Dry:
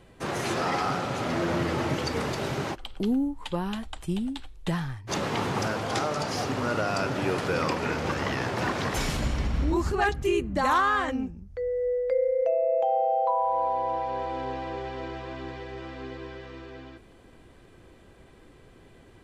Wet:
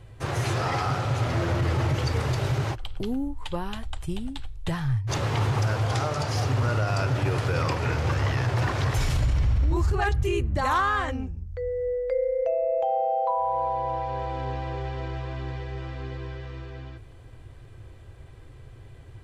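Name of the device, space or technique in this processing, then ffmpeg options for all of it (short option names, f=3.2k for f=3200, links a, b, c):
car stereo with a boomy subwoofer: -af "lowshelf=f=150:t=q:w=3:g=8.5,alimiter=limit=-16.5dB:level=0:latency=1:release=18"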